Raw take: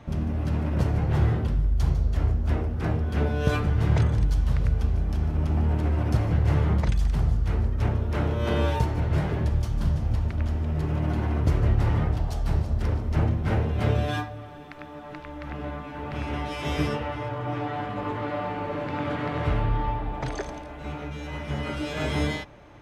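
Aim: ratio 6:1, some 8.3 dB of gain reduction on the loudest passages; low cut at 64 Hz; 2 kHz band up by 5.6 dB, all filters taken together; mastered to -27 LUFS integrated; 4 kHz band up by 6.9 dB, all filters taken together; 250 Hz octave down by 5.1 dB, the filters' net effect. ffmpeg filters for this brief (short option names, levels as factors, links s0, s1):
-af "highpass=64,equalizer=f=250:t=o:g=-8,equalizer=f=2000:t=o:g=5.5,equalizer=f=4000:t=o:g=7,acompressor=threshold=0.0398:ratio=6,volume=2"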